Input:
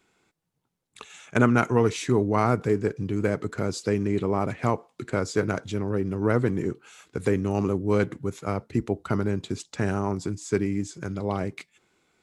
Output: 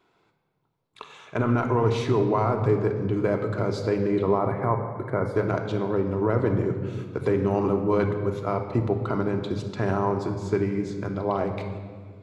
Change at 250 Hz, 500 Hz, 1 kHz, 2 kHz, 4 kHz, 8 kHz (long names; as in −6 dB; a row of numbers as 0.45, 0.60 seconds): −0.5 dB, +2.5 dB, +2.0 dB, −3.5 dB, −2.0 dB, below −10 dB